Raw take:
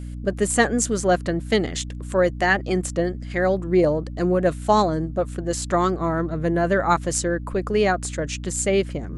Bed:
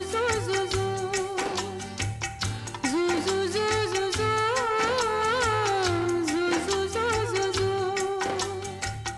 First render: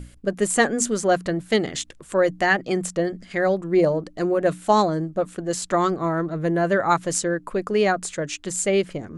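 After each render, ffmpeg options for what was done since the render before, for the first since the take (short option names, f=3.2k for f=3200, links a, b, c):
-af "bandreject=f=60:t=h:w=6,bandreject=f=120:t=h:w=6,bandreject=f=180:t=h:w=6,bandreject=f=240:t=h:w=6,bandreject=f=300:t=h:w=6"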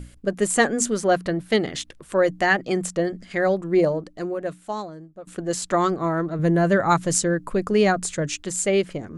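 -filter_complex "[0:a]asettb=1/sr,asplit=3[a][b][c];[a]atrim=end=0.904[d];[b]atrim=start=0.9:end=2.2,asetpts=PTS-STARTPTS,afade=t=in:d=0.004:c=qsin,afade=t=out:st=1.296:d=0.004:c=qsin,equalizer=f=7.3k:t=o:w=0.43:g=-6[e];[c]atrim=start=2.196[f];[d][e]acrossfade=d=0.004:c1=hsin:c2=qsin[g];[g][f]acrossfade=d=0.004:c1=qsin:c2=hsin,asettb=1/sr,asplit=3[h][i][j];[h]atrim=end=6.394[k];[i]atrim=start=6.39:end=8.43,asetpts=PTS-STARTPTS,afade=t=in:d=0.004:c=qsin,afade=t=out:st=2.036:d=0.004:c=qsin,bass=f=250:g=7,treble=f=4k:g=3[l];[j]atrim=start=8.426[m];[k][l]acrossfade=d=0.004:c1=hsin:c2=qsin[n];[n][m]acrossfade=d=0.004:c1=qsin:c2=hsin,asplit=2[o][p];[o]atrim=end=5.27,asetpts=PTS-STARTPTS,afade=t=out:st=3.75:d=1.52:c=qua:silence=0.141254[q];[p]atrim=start=5.27,asetpts=PTS-STARTPTS,afade=t=in:d=0.004:c=hsin:silence=0.141254[r];[q][r]concat=n=2:v=0:a=1"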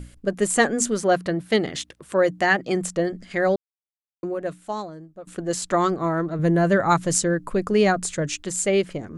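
-filter_complex "[0:a]asettb=1/sr,asplit=3[a][b][c];[a]atrim=end=1.034[d];[b]atrim=start=1.03:end=2.75,asetpts=PTS-STARTPTS,afade=t=in:d=0.004:c=qsin,afade=t=out:st=1.716:d=0.004:c=qsin,highpass=58[e];[c]atrim=start=2.746[f];[d][e]acrossfade=d=0.004:c1=hsin:c2=qsin[g];[g][f]acrossfade=d=0.004:c1=qsin:c2=hsin,asplit=3[h][i][j];[h]atrim=end=3.56,asetpts=PTS-STARTPTS,afade=t=out:st=3.556:d=0.004:c=hsin[k];[i]atrim=start=3.56:end=4.23,asetpts=PTS-STARTPTS,volume=0[l];[j]atrim=start=4.23,asetpts=PTS-STARTPTS,afade=t=in:d=0.004:c=hsin[m];[k][l][m]concat=n=3:v=0:a=1"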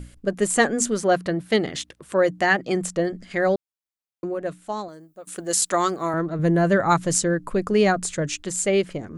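-filter_complex "[0:a]asettb=1/sr,asplit=3[a][b][c];[a]atrim=end=4.884[d];[b]atrim=start=4.88:end=6.14,asetpts=PTS-STARTPTS,afade=t=in:d=0.004:c=qsin,afade=t=out:st=1.256:d=0.004:c=qsin,aemphasis=mode=production:type=bsi[e];[c]atrim=start=6.136[f];[d][e]acrossfade=d=0.004:c1=hsin:c2=qsin[g];[g][f]acrossfade=d=0.004:c1=qsin:c2=hsin"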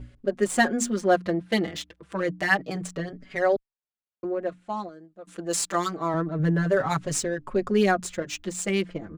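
-filter_complex "[0:a]adynamicsmooth=sensitivity=4.5:basefreq=3.5k,asplit=2[a][b];[b]adelay=4.9,afreqshift=-0.28[c];[a][c]amix=inputs=2:normalize=1"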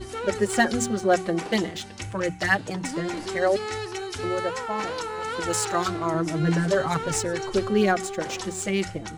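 -filter_complex "[1:a]volume=-6dB[a];[0:a][a]amix=inputs=2:normalize=0"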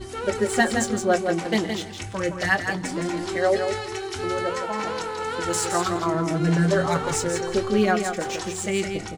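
-filter_complex "[0:a]asplit=2[a][b];[b]adelay=23,volume=-11dB[c];[a][c]amix=inputs=2:normalize=0,aecho=1:1:166|332|498:0.473|0.0757|0.0121"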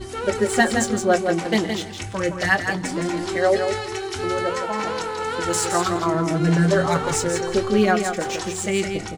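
-af "volume=2.5dB"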